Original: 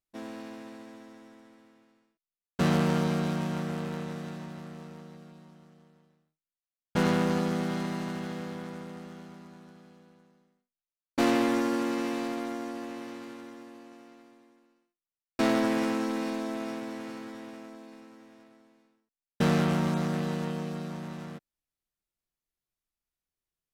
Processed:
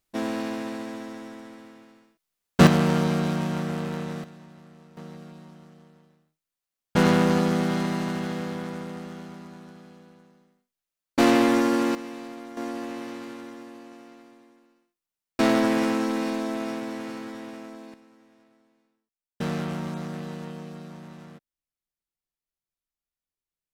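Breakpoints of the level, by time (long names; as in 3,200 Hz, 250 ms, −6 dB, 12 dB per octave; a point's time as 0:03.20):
+12 dB
from 0:02.67 +4 dB
from 0:04.24 −7 dB
from 0:04.97 +6 dB
from 0:11.95 −6 dB
from 0:12.57 +4.5 dB
from 0:17.94 −4.5 dB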